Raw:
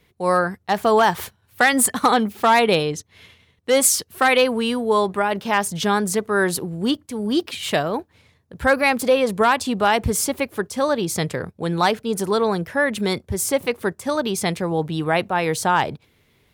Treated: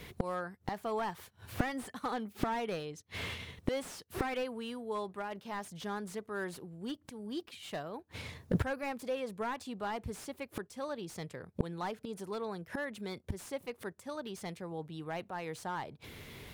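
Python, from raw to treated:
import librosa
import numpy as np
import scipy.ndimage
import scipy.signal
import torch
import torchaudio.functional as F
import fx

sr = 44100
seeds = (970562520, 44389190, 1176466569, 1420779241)

y = fx.gate_flip(x, sr, shuts_db=-26.0, range_db=-30)
y = fx.slew_limit(y, sr, full_power_hz=8.3)
y = y * librosa.db_to_amplitude(11.0)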